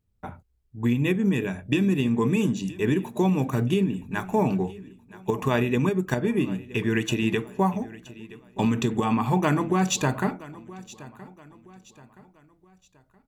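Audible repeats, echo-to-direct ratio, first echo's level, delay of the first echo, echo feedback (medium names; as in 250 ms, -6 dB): 3, -18.5 dB, -19.0 dB, 972 ms, 40%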